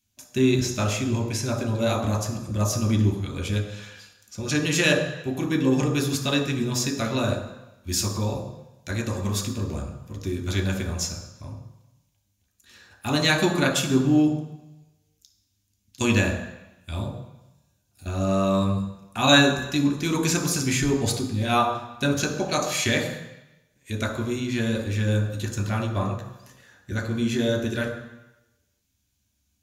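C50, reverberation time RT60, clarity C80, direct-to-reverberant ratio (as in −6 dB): 8.0 dB, 0.95 s, 10.0 dB, 2.5 dB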